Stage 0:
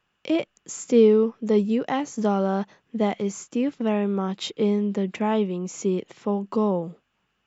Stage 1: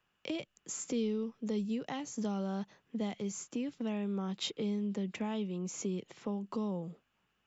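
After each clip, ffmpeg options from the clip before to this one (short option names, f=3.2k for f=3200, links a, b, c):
-filter_complex "[0:a]acrossover=split=170|3000[a][b][c];[b]acompressor=threshold=-33dB:ratio=5[d];[a][d][c]amix=inputs=3:normalize=0,volume=-5dB"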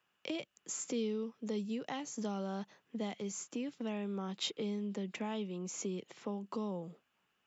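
-af "highpass=f=250:p=1"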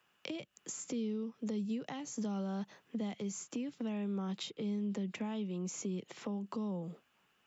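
-filter_complex "[0:a]acrossover=split=210[a][b];[b]acompressor=threshold=-47dB:ratio=6[c];[a][c]amix=inputs=2:normalize=0,volume=5.5dB"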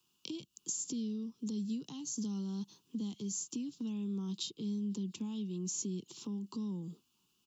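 -af "firequalizer=gain_entry='entry(350,0);entry(590,-24);entry(970,-6);entry(1900,-26);entry(2800,-3);entry(4300,6)':delay=0.05:min_phase=1"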